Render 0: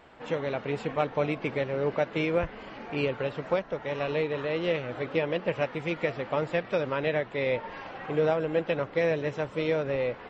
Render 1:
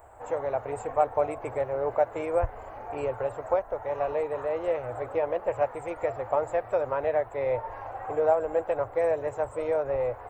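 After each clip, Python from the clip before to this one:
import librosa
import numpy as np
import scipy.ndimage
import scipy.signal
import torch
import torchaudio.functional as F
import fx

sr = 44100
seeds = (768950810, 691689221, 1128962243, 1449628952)

y = fx.curve_eq(x, sr, hz=(110.0, 160.0, 740.0, 2300.0, 3200.0, 5600.0, 8100.0), db=(0, -27, 0, -18, -26, -22, 9))
y = y * librosa.db_to_amplitude(7.5)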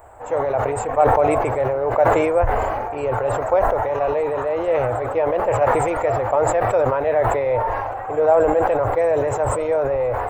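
y = fx.sustainer(x, sr, db_per_s=24.0)
y = y * librosa.db_to_amplitude(6.5)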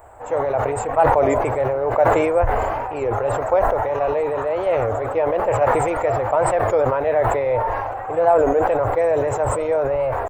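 y = fx.record_warp(x, sr, rpm=33.33, depth_cents=160.0)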